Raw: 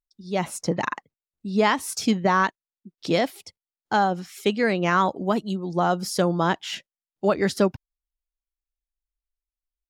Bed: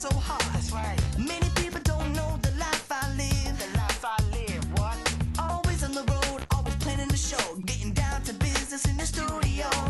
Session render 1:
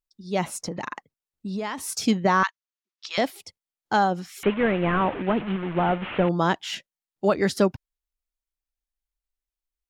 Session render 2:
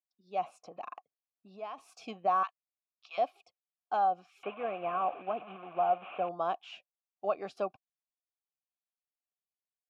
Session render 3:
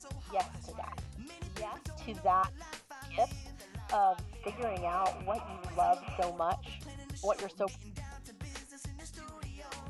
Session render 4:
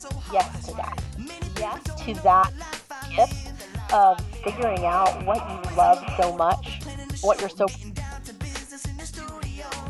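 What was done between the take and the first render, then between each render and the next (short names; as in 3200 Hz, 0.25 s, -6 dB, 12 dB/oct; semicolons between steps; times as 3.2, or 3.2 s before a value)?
0.61–1.78 compressor 5:1, threshold -27 dBFS; 2.43–3.18 Chebyshev band-pass 1100–6500 Hz, order 3; 4.43–6.29 delta modulation 16 kbps, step -27.5 dBFS
vowel filter a
add bed -18 dB
gain +11.5 dB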